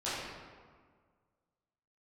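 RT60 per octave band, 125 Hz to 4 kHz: 2.0, 1.9, 1.7, 1.7, 1.3, 0.95 s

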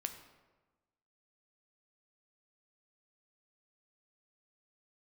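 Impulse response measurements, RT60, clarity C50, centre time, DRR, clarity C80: 1.2 s, 9.5 dB, 16 ms, 6.5 dB, 11.0 dB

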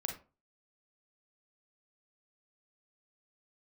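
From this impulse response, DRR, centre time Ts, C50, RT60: 2.5 dB, 20 ms, 7.0 dB, 0.35 s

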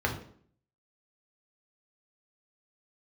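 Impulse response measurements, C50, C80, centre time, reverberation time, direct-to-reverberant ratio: 8.5 dB, 13.0 dB, 18 ms, 0.55 s, 0.0 dB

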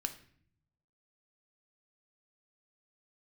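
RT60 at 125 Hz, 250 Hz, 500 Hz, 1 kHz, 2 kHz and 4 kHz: 1.2, 1.0, 0.65, 0.55, 0.60, 0.45 s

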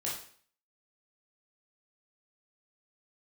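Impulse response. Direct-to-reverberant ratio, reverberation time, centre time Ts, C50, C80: -5.5 dB, 0.50 s, 41 ms, 3.5 dB, 8.0 dB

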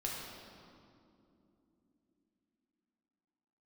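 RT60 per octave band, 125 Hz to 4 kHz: 3.7, 5.1, 3.6, 2.3, 1.7, 1.6 s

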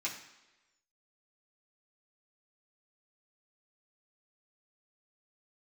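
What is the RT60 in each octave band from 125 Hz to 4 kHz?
0.80, 0.95, 1.1, 1.0, 1.1, 1.0 s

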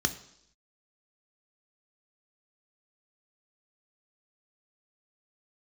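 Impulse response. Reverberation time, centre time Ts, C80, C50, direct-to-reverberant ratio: 0.75 s, 9 ms, 16.5 dB, 14.0 dB, 7.5 dB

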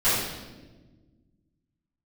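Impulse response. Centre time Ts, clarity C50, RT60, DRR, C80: 81 ms, -1.0 dB, 1.3 s, -16.5 dB, 2.0 dB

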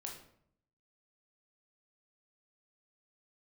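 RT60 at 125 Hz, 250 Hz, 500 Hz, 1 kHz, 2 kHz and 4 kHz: 0.95, 0.85, 0.70, 0.60, 0.55, 0.45 s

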